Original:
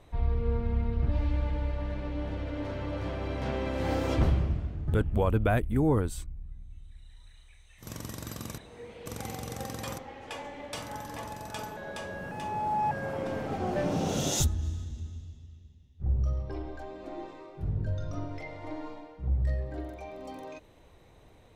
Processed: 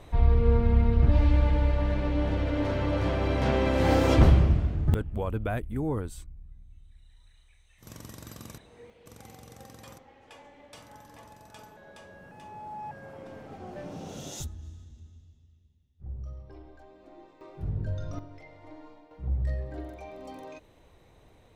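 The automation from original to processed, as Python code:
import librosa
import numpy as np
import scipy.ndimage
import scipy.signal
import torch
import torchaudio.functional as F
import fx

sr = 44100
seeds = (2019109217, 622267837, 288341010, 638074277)

y = fx.gain(x, sr, db=fx.steps((0.0, 7.0), (4.94, -5.0), (8.9, -11.0), (17.41, -0.5), (18.19, -9.0), (19.11, -1.0)))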